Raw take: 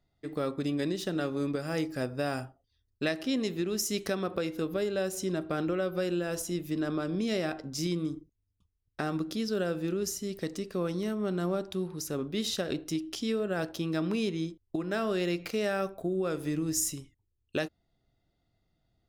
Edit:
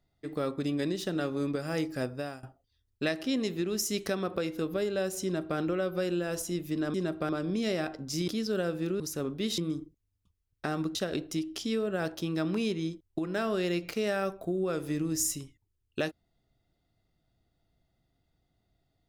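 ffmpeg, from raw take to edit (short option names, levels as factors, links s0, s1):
-filter_complex "[0:a]asplit=8[s0][s1][s2][s3][s4][s5][s6][s7];[s0]atrim=end=2.43,asetpts=PTS-STARTPTS,afade=t=out:st=2.05:d=0.38:silence=0.1[s8];[s1]atrim=start=2.43:end=6.942,asetpts=PTS-STARTPTS,afade=t=in:d=0.004:c=hsin:silence=0.1[s9];[s2]atrim=start=5.228:end=5.582[s10];[s3]atrim=start=6.938:end=7.932[s11];[s4]atrim=start=9.298:end=10.022[s12];[s5]atrim=start=11.938:end=12.522[s13];[s6]atrim=start=7.928:end=9.302[s14];[s7]atrim=start=12.518[s15];[s8][s9]concat=n=2:v=0:a=1[s16];[s16][s10]acrossfade=d=0.004:c1=hsin:c2=hsin[s17];[s17][s11]acrossfade=d=0.004:c1=hsin:c2=hsin[s18];[s18][s12]acrossfade=d=0.004:c1=hsin:c2=hsin[s19];[s19][s13]acrossfade=d=0.004:c1=hsin:c2=hsin[s20];[s20][s14]acrossfade=d=0.004:c1=hsin:c2=hsin[s21];[s21][s15]acrossfade=d=0.004:c1=hsin:c2=hsin"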